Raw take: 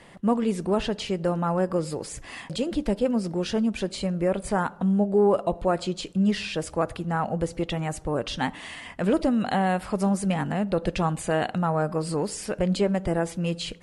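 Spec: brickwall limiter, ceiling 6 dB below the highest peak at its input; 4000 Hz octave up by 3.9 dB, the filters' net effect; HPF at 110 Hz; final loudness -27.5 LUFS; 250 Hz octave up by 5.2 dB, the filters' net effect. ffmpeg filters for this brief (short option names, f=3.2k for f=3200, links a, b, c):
-af "highpass=110,equalizer=f=250:t=o:g=7.5,equalizer=f=4k:t=o:g=5,volume=-3dB,alimiter=limit=-17dB:level=0:latency=1"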